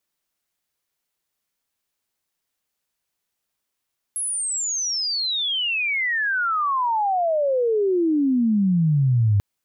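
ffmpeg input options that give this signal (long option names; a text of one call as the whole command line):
ffmpeg -f lavfi -i "aevalsrc='pow(10,(-23+8.5*t/5.24)/20)*sin(2*PI*11000*5.24/log(98/11000)*(exp(log(98/11000)*t/5.24)-1))':duration=5.24:sample_rate=44100" out.wav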